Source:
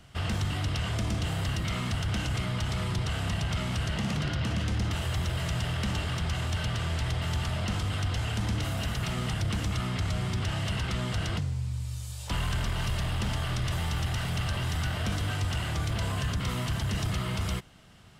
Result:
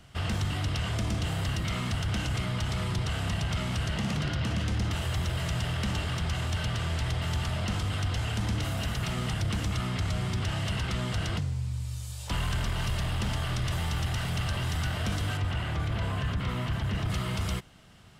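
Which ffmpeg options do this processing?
-filter_complex "[0:a]asettb=1/sr,asplit=3[a][b][c];[a]atrim=end=15.374[d];[b]atrim=start=15.37:end=17.1,asetpts=PTS-STARTPTS,afade=t=in:d=0.004:c=qsin,afade=t=out:st=1.726:d=0.004:c=qsin,acrossover=split=3500[e][f];[f]acompressor=threshold=-54dB:ratio=4:attack=1:release=60[g];[e][g]amix=inputs=2:normalize=0[h];[c]atrim=start=17.096[i];[d][h]acrossfade=d=0.004:c1=hsin:c2=qsin[j];[j][i]acrossfade=d=0.004:c1=qsin:c2=hsin"

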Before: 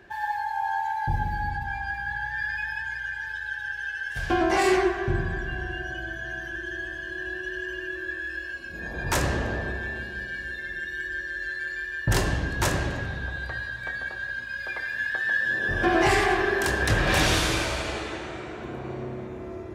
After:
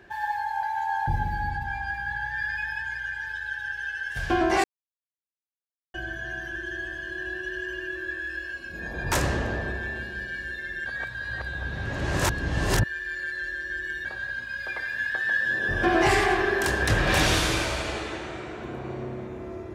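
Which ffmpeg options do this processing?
-filter_complex "[0:a]asplit=7[a][b][c][d][e][f][g];[a]atrim=end=0.632[h];[b]atrim=start=0.628:end=1.062,asetpts=PTS-STARTPTS,areverse[i];[c]atrim=start=1.058:end=4.64,asetpts=PTS-STARTPTS,afade=t=out:st=3.578:d=0.004:c=hsin[j];[d]atrim=start=4.64:end=5.94,asetpts=PTS-STARTPTS,volume=0[k];[e]atrim=start=5.94:end=10.862,asetpts=PTS-STARTPTS,afade=t=in:d=0.004:c=hsin[l];[f]atrim=start=10.858:end=14.052,asetpts=PTS-STARTPTS,areverse[m];[g]atrim=start=14.048[n];[h][i]acrossfade=d=0.004:c1=hsin:c2=hsin[o];[j][k][l]concat=n=3:v=0:a=1[p];[o][p]acrossfade=d=0.004:c1=hsin:c2=hsin[q];[q][m]acrossfade=d=0.004:c1=hsin:c2=hsin[r];[r][n]acrossfade=d=0.004:c1=hsin:c2=hsin"

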